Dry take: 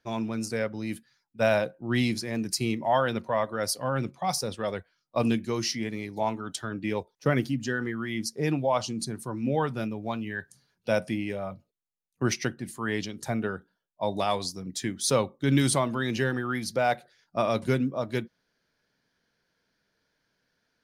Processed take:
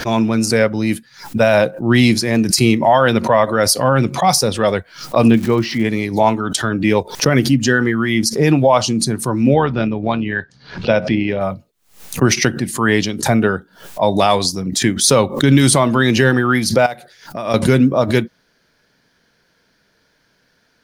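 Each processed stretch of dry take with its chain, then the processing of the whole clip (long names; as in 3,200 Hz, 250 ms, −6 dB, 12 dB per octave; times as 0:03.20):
0:05.27–0:05.83: high-frequency loss of the air 320 metres + surface crackle 410 per second −44 dBFS
0:09.54–0:11.41: low-pass filter 4,500 Hz 24 dB per octave + amplitude modulation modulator 76 Hz, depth 25%
0:16.86–0:17.54: high-shelf EQ 8,600 Hz +7 dB + downward compressor 3 to 1, threshold −42 dBFS
whole clip: boost into a limiter +16.5 dB; background raised ahead of every attack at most 130 dB per second; level −1.5 dB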